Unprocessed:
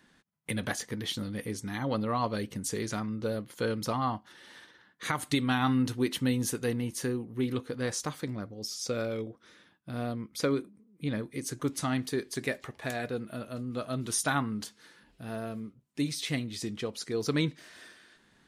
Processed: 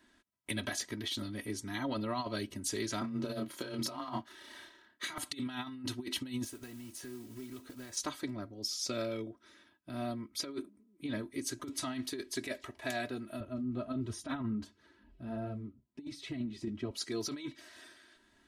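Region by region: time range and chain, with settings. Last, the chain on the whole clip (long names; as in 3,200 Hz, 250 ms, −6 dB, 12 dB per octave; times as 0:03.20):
0:03.01–0:05.18: leveller curve on the samples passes 1 + frequency shifter +15 Hz + double-tracking delay 31 ms −3 dB
0:06.44–0:07.97: downward compressor 12 to 1, threshold −39 dBFS + noise that follows the level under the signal 14 dB
0:13.40–0:16.91: RIAA equalisation playback + flanger 1.4 Hz, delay 1.5 ms, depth 4.3 ms, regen −35% + high-pass filter 61 Hz
whole clip: comb filter 3.1 ms, depth 90%; dynamic equaliser 3,800 Hz, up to +5 dB, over −44 dBFS, Q 0.95; compressor whose output falls as the input rises −28 dBFS, ratio −0.5; level −7.5 dB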